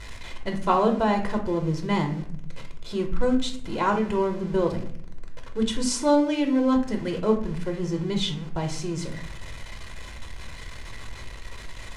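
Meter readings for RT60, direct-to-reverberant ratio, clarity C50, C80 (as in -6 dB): 0.60 s, 3.0 dB, 9.5 dB, 13.5 dB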